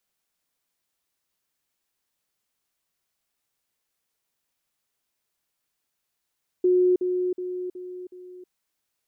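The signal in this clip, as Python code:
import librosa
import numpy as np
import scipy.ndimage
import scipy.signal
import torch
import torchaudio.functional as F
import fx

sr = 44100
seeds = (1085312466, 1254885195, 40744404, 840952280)

y = fx.level_ladder(sr, hz=363.0, from_db=-16.0, step_db=-6.0, steps=5, dwell_s=0.32, gap_s=0.05)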